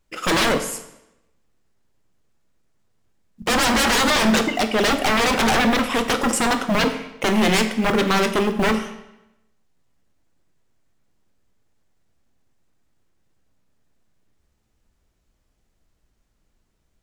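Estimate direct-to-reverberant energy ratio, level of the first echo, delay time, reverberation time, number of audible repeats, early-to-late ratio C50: 8.0 dB, none, none, 0.90 s, none, 10.5 dB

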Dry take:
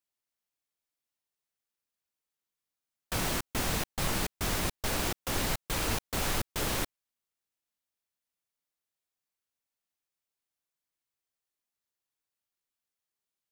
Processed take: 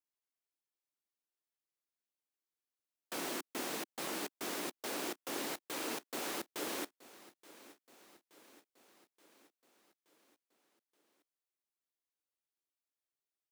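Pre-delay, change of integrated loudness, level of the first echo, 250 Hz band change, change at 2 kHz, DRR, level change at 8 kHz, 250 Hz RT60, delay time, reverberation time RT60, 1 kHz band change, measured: none, -8.0 dB, -19.5 dB, -6.5 dB, -8.0 dB, none, -8.0 dB, none, 0.875 s, none, -7.5 dB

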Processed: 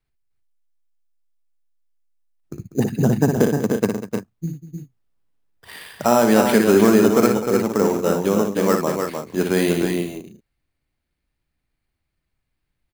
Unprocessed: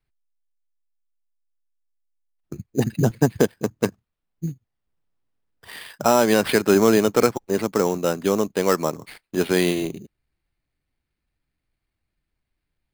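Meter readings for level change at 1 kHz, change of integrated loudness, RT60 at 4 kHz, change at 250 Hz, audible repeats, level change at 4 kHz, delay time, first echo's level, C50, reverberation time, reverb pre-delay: +2.0 dB, +2.5 dB, none, +4.5 dB, 4, -1.0 dB, 59 ms, -6.0 dB, none, none, none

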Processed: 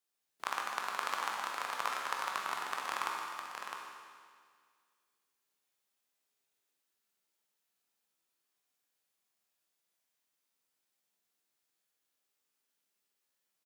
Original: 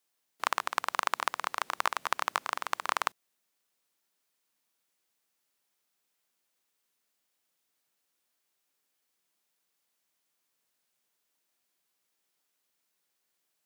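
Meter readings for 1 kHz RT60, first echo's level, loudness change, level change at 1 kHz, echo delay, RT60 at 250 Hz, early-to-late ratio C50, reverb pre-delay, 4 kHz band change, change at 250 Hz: 1.9 s, -6.0 dB, -5.0 dB, -4.5 dB, 0.658 s, 2.0 s, -1.0 dB, 15 ms, -4.0 dB, -3.5 dB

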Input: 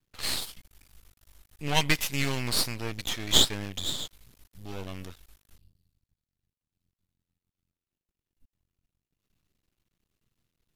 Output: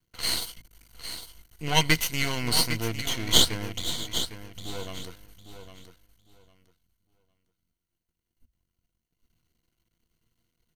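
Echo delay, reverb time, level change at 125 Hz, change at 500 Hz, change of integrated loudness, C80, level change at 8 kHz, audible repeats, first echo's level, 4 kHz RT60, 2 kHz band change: 0.805 s, none, +2.5 dB, +2.5 dB, +1.5 dB, none, +2.5 dB, 2, -10.0 dB, none, +3.0 dB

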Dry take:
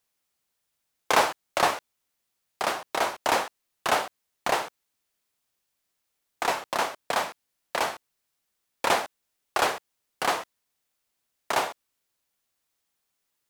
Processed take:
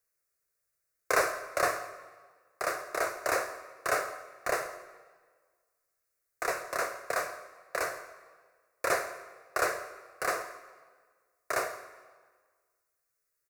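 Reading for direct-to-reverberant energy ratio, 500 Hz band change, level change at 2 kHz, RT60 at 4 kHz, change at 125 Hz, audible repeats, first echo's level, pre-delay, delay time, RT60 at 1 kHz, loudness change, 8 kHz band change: 10.0 dB, -2.5 dB, -2.5 dB, 1.2 s, -6.0 dB, 1, -18.5 dB, 19 ms, 0.165 s, 1.6 s, -5.0 dB, -3.0 dB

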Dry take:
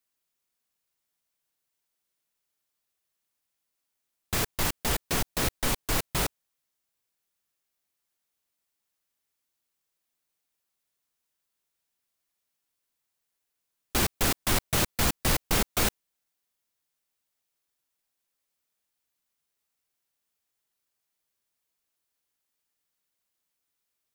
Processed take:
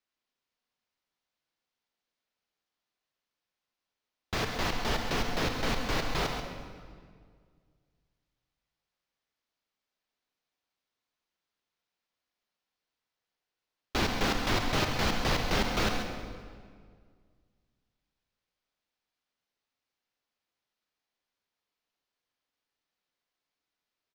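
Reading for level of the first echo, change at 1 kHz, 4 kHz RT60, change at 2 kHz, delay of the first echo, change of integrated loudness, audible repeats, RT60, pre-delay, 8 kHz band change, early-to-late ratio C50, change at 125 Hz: -8.0 dB, +1.0 dB, 1.4 s, 0.0 dB, 0.135 s, -3.5 dB, 1, 1.9 s, 8 ms, -11.0 dB, 4.0 dB, -2.0 dB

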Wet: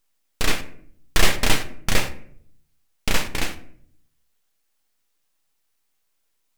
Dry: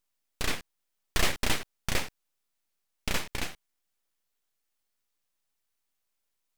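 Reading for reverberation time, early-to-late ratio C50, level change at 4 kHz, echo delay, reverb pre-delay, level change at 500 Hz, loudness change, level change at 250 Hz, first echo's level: 0.60 s, 13.0 dB, +8.0 dB, none, 4 ms, +8.5 dB, +8.0 dB, +8.5 dB, none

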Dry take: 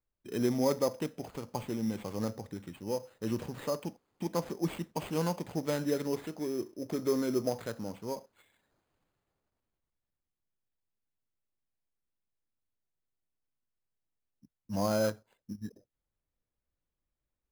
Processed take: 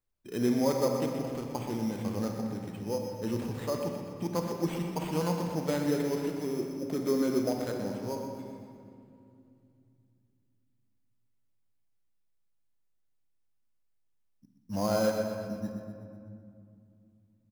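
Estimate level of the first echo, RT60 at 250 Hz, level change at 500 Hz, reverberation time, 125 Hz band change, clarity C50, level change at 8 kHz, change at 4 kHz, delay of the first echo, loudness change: -8.5 dB, 3.8 s, +2.5 dB, 2.5 s, +3.0 dB, 2.5 dB, +1.5 dB, +1.5 dB, 0.124 s, +2.5 dB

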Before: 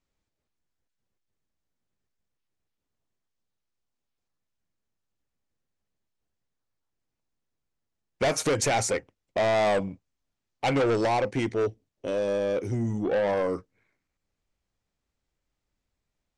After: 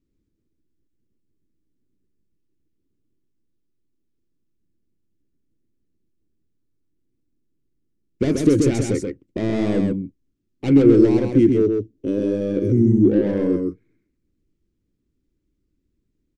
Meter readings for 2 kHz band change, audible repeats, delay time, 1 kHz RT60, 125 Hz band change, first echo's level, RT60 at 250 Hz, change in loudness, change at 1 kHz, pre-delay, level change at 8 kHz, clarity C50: -5.5 dB, 1, 0.131 s, none, +11.0 dB, -4.5 dB, none, +8.0 dB, -10.5 dB, none, -4.0 dB, none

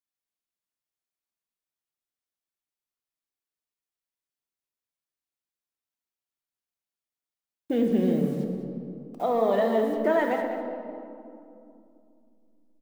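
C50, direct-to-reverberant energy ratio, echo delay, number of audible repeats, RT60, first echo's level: 4.0 dB, 2.5 dB, 0.202 s, 1, 2.7 s, -12.5 dB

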